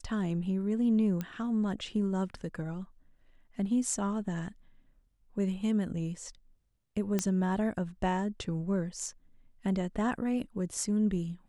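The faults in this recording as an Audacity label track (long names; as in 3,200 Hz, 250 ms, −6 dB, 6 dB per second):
1.210000	1.210000	click −21 dBFS
7.190000	7.190000	click −15 dBFS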